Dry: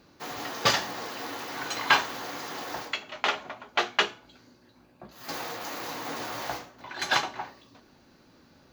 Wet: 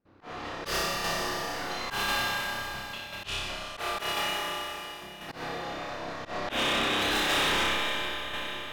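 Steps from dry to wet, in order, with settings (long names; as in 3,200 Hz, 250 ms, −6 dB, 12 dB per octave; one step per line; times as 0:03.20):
one scale factor per block 3 bits
sound drawn into the spectrogram noise, 0:06.48–0:07.64, 220–3,900 Hz −24 dBFS
in parallel at −11 dB: sample-rate reduction 1,200 Hz, jitter 0%
on the sum: gain on a spectral selection 0:01.96–0:03.37, 250–2,300 Hz −11 dB
low-pass that shuts in the quiet parts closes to 1,900 Hz, open at −20.5 dBFS
noise gate with hold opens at −50 dBFS
flutter between parallel walls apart 5.2 metres, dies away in 0.75 s
four-comb reverb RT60 4 s, combs from 32 ms, DRR 0.5 dB
shaped tremolo saw down 0.96 Hz, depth 45%
volume swells 111 ms
soft clipping −19.5 dBFS, distortion −11 dB
level −3 dB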